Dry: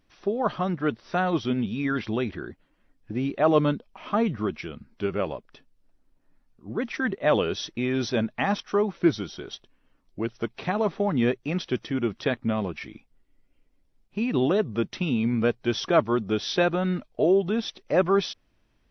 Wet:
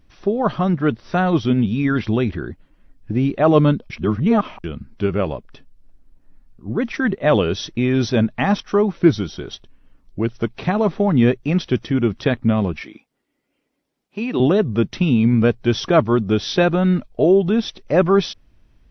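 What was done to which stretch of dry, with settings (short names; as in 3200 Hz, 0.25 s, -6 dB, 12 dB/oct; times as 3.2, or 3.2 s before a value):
3.9–4.64 reverse
12.81–14.4 HPF 330 Hz
whole clip: low shelf 180 Hz +11.5 dB; gain +4.5 dB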